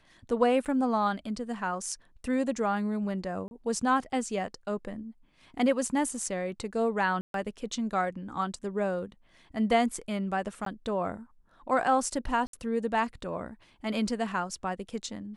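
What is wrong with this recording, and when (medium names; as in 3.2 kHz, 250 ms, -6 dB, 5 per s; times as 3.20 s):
0.65–0.66 s: dropout 6.9 ms
3.48–3.51 s: dropout 31 ms
7.21–7.34 s: dropout 132 ms
10.65–10.66 s: dropout
12.47–12.53 s: dropout 63 ms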